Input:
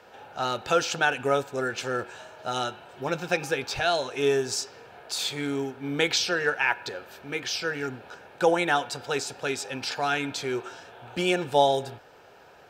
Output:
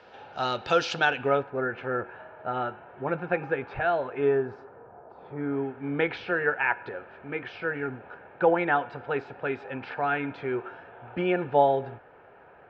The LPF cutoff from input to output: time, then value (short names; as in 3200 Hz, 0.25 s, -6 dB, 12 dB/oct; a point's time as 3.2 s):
LPF 24 dB/oct
1.03 s 4900 Hz
1.52 s 2000 Hz
4.17 s 2000 Hz
5.21 s 1000 Hz
5.68 s 2200 Hz